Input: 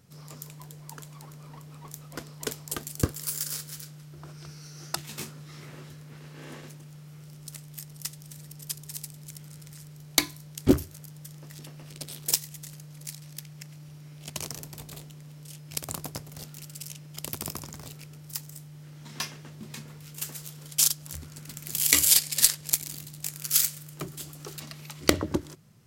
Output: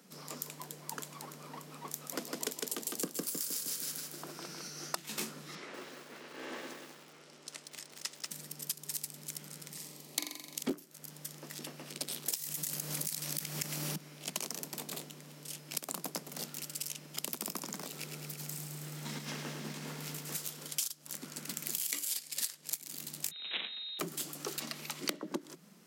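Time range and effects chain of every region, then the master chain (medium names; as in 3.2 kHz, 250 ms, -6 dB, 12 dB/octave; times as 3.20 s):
1.91–4.68 s: feedback delay 156 ms, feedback 45%, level -3.5 dB + dynamic bell 1.4 kHz, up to -5 dB, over -52 dBFS, Q 1.2
5.55–8.31 s: high-pass 310 Hz + distance through air 75 m + bit-crushed delay 188 ms, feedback 55%, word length 9-bit, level -3 dB
9.71–10.63 s: peaking EQ 1.5 kHz -14.5 dB 0.24 oct + flutter echo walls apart 7.4 m, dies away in 0.57 s
12.36–13.96 s: treble shelf 7.9 kHz +9 dB + level flattener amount 100%
17.86–20.35 s: compressor with a negative ratio -44 dBFS, ratio -0.5 + bit-crushed delay 107 ms, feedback 80%, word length 11-bit, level -6 dB
23.31–23.99 s: median filter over 15 samples + frequency inversion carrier 3.9 kHz
whole clip: steep high-pass 170 Hz 72 dB/octave; compression 12:1, threshold -36 dBFS; trim +3.5 dB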